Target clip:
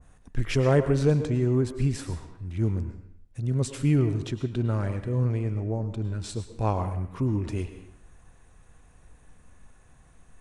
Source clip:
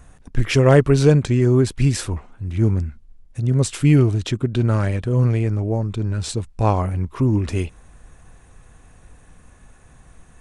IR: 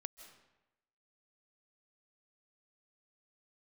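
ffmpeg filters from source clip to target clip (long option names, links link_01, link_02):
-filter_complex "[1:a]atrim=start_sample=2205,asetrate=66150,aresample=44100[link_01];[0:a][link_01]afir=irnorm=-1:irlink=0,adynamicequalizer=threshold=0.00562:dfrequency=1500:dqfactor=0.7:tfrequency=1500:tqfactor=0.7:attack=5:release=100:ratio=0.375:range=2.5:mode=cutabove:tftype=highshelf"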